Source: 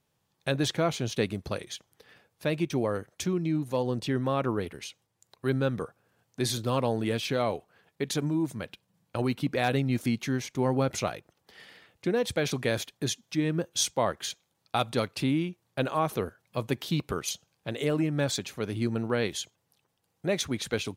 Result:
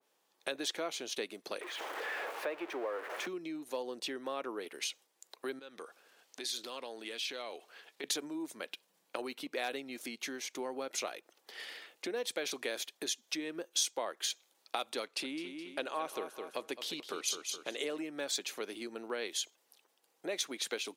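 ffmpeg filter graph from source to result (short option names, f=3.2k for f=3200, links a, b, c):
-filter_complex "[0:a]asettb=1/sr,asplit=3[a][b][c];[a]atrim=end=1.614[d];[b]atrim=start=1.61:end=3.27,asetpts=PTS-STARTPTS,afade=t=in:d=0.004:c=qsin,afade=t=out:st=1.656:d=0.004:c=qsin,aeval=exprs='val(0)+0.5*0.0299*sgn(val(0))':c=same,acrossover=split=370 2200:gain=0.112 1 0.0708[e][f][g];[e][f][g]amix=inputs=3:normalize=0[h];[c]atrim=start=3.266[i];[d][h]acrossfade=d=0.004:c1=hsin:c2=qsin[j];[j][i]acrossfade=d=0.004:c1=qsin:c2=hsin,asettb=1/sr,asplit=3[k][l][m];[k]atrim=end=5.594[n];[l]atrim=start=5.59:end=8.04,asetpts=PTS-STARTPTS,afade=t=in:d=0.004:c=qsin,afade=t=out:st=2.446:d=0.004:c=qsin,equalizer=f=3.8k:t=o:w=2.4:g=7.5,acompressor=threshold=-45dB:ratio=3:attack=3.2:release=140:knee=1:detection=peak[o];[m]atrim=start=8.036[p];[n][o]acrossfade=d=0.004:c1=hsin:c2=qsin[q];[q][p]acrossfade=d=0.004:c1=qsin:c2=hsin,asettb=1/sr,asplit=3[r][s][t];[r]atrim=end=15.034[u];[s]atrim=start=15.03:end=17.98,asetpts=PTS-STARTPTS,afade=t=in:d=0.004:c=qsin,afade=t=out:st=2.946:d=0.004:c=qsin,lowpass=11k,aecho=1:1:210|420|630:0.299|0.0866|0.0251,atrim=end_sample=130095[v];[t]atrim=start=17.976[w];[u][v]acrossfade=d=0.004:c1=hsin:c2=qsin[x];[x][w]acrossfade=d=0.004:c1=qsin:c2=hsin,acompressor=threshold=-40dB:ratio=3,highpass=f=310:w=0.5412,highpass=f=310:w=1.3066,adynamicequalizer=threshold=0.00141:dfrequency=1900:dqfactor=0.7:tfrequency=1900:tqfactor=0.7:attack=5:release=100:ratio=0.375:range=2.5:mode=boostabove:tftype=highshelf,volume=2.5dB"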